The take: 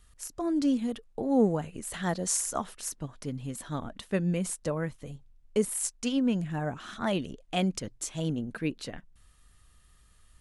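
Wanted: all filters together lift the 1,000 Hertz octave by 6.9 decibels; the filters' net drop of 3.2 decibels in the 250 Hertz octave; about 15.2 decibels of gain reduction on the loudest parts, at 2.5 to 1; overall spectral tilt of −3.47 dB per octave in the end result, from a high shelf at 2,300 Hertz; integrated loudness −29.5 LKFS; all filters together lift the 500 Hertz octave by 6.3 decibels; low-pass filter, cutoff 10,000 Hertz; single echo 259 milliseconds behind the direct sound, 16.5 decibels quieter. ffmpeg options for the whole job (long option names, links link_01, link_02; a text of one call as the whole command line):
ffmpeg -i in.wav -af "lowpass=10000,equalizer=frequency=250:width_type=o:gain=-6.5,equalizer=frequency=500:width_type=o:gain=7.5,equalizer=frequency=1000:width_type=o:gain=5.5,highshelf=frequency=2300:gain=7,acompressor=threshold=-40dB:ratio=2.5,aecho=1:1:259:0.15,volume=9.5dB" out.wav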